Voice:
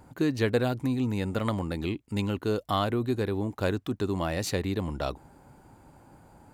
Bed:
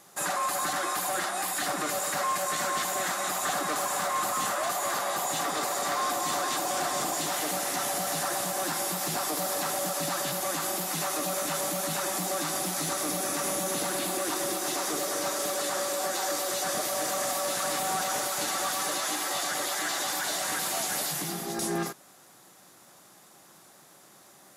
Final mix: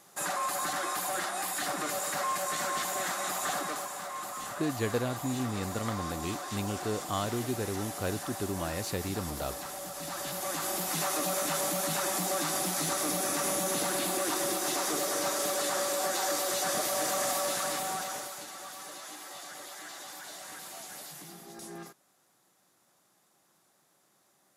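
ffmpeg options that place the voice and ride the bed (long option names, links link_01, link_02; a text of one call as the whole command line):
ffmpeg -i stem1.wav -i stem2.wav -filter_complex "[0:a]adelay=4400,volume=-5.5dB[link_01];[1:a]volume=6.5dB,afade=type=out:start_time=3.54:duration=0.39:silence=0.446684,afade=type=in:start_time=9.94:duration=1.05:silence=0.334965,afade=type=out:start_time=17.36:duration=1.1:silence=0.211349[link_02];[link_01][link_02]amix=inputs=2:normalize=0" out.wav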